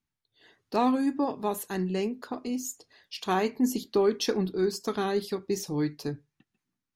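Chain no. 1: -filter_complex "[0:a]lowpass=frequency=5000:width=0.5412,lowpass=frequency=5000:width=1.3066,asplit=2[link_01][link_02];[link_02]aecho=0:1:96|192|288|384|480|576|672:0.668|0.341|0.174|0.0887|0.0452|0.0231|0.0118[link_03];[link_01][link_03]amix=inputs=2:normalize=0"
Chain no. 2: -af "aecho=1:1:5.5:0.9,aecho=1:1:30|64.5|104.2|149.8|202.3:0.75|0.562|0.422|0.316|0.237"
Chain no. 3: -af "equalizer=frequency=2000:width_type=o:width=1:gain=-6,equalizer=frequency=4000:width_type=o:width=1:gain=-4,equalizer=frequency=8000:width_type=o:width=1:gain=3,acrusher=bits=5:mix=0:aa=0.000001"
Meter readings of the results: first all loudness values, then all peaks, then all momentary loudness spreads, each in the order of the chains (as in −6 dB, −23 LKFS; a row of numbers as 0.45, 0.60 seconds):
−27.5, −23.5, −29.0 LKFS; −9.5, −7.0, −14.5 dBFS; 12, 13, 11 LU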